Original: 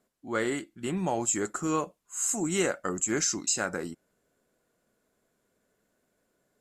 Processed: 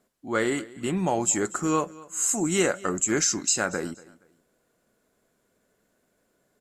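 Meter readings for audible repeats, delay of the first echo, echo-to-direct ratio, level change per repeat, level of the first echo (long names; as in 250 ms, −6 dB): 2, 236 ms, −20.5 dB, −11.0 dB, −21.0 dB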